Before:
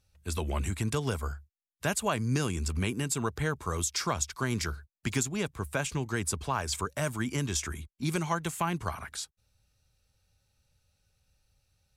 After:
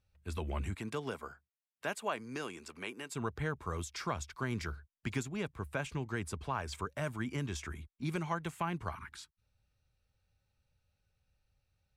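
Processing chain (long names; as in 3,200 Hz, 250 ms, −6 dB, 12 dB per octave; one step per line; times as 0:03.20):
0:00.74–0:03.14: high-pass filter 190 Hz → 470 Hz 12 dB per octave
0:08.96–0:09.41: time-frequency box erased 400–850 Hz
drawn EQ curve 2,300 Hz 0 dB, 4,100 Hz −5 dB, 6,900 Hz −10 dB
level −5.5 dB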